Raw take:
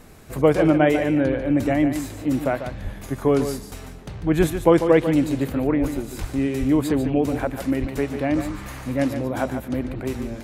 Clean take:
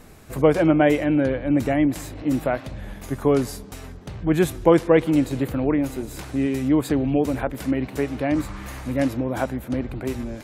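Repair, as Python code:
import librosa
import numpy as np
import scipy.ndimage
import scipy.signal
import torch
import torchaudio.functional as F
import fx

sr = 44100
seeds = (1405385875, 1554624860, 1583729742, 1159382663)

y = fx.fix_declick_ar(x, sr, threshold=6.5)
y = fx.fix_deplosive(y, sr, at_s=(2.83, 4.37, 5.8, 6.2, 6.59, 7.8))
y = fx.fix_echo_inverse(y, sr, delay_ms=145, level_db=-9.0)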